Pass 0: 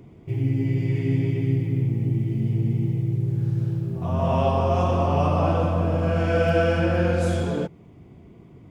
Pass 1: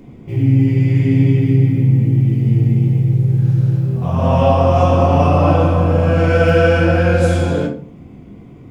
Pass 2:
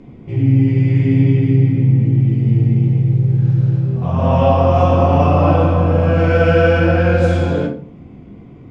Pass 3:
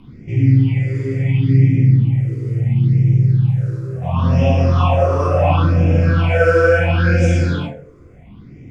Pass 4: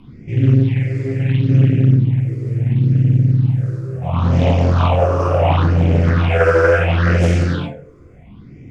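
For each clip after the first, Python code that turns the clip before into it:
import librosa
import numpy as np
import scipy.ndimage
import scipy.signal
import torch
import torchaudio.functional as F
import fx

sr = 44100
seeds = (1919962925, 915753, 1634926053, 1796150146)

y1 = fx.room_shoebox(x, sr, seeds[0], volume_m3=380.0, walls='furnished', distance_m=2.1)
y1 = F.gain(torch.from_numpy(y1), 5.0).numpy()
y2 = scipy.signal.sosfilt(scipy.signal.bessel(2, 4200.0, 'lowpass', norm='mag', fs=sr, output='sos'), y1)
y3 = fx.phaser_stages(y2, sr, stages=6, low_hz=200.0, high_hz=1100.0, hz=0.72, feedback_pct=35)
y3 = fx.high_shelf(y3, sr, hz=2500.0, db=9.5)
y4 = fx.doppler_dist(y3, sr, depth_ms=0.72)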